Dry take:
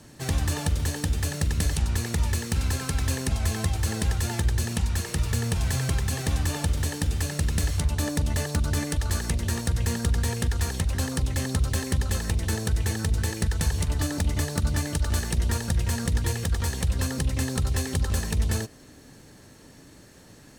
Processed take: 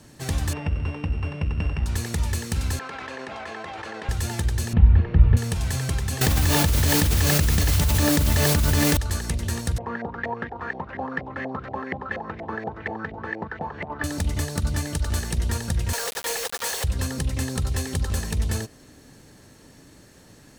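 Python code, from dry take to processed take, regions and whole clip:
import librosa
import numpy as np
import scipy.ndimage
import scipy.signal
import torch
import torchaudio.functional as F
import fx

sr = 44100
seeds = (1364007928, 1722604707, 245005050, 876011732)

y = fx.chain(x, sr, fx.sample_sort(block=16),
    fx.lowpass(hz=2200.0, slope=12), at=(0.53, 1.86))
y = fx.chain(y, sr, fx.bandpass_edges(low_hz=510.0, high_hz=2100.0),
    fx.env_flatten(amount_pct=100), at=(2.79, 4.09))
y = fx.chain(y, sr, fx.lowpass(hz=2900.0, slope=24),
    fx.tilt_eq(slope=-3.0), at=(4.73, 5.37))
y = fx.chain(y, sr, fx.lowpass(hz=6700.0, slope=12),
    fx.quant_dither(seeds[0], bits=6, dither='triangular'),
    fx.env_flatten(amount_pct=100), at=(6.21, 8.97))
y = fx.chain(y, sr, fx.peak_eq(hz=1500.0, db=-3.5, octaves=0.9),
    fx.filter_lfo_lowpass(shape='saw_up', hz=4.2, low_hz=650.0, high_hz=2100.0, q=6.4),
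    fx.bandpass_edges(low_hz=230.0, high_hz=5300.0), at=(9.78, 14.04))
y = fx.chain(y, sr, fx.steep_highpass(hz=430.0, slope=72),
    fx.quant_companded(bits=2), at=(15.93, 16.84))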